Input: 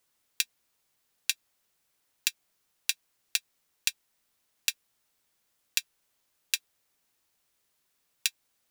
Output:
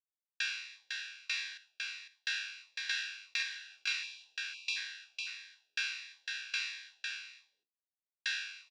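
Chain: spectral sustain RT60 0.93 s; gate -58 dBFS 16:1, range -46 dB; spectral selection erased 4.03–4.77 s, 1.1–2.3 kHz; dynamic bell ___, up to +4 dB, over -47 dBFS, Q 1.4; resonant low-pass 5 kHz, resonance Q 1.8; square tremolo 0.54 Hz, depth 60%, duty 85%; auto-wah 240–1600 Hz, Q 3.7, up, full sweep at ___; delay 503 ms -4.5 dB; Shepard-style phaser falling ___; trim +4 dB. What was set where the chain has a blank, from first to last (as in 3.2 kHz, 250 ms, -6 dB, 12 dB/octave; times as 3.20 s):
1.1 kHz, -29.5 dBFS, 1.5 Hz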